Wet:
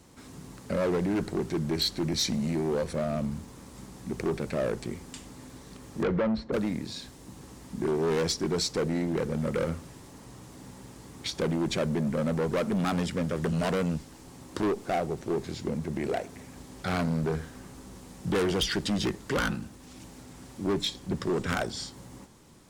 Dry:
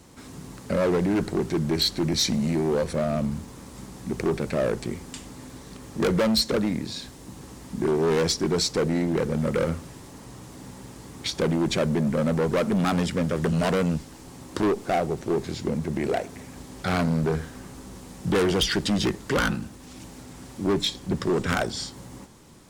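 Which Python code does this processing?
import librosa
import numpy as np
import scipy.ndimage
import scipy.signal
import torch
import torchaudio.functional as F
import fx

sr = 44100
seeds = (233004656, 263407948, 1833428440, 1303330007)

y = fx.lowpass(x, sr, hz=fx.line((6.02, 2800.0), (6.52, 1200.0)), slope=12, at=(6.02, 6.52), fade=0.02)
y = y * 10.0 ** (-4.5 / 20.0)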